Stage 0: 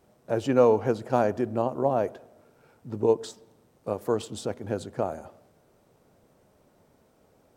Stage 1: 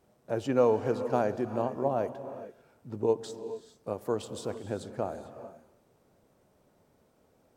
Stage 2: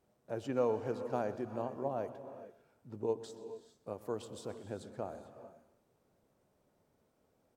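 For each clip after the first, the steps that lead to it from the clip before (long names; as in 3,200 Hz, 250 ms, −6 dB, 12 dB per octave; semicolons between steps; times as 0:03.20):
reverb whose tail is shaped and stops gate 470 ms rising, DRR 11 dB; level −4.5 dB
single-tap delay 125 ms −17.5 dB; level −8 dB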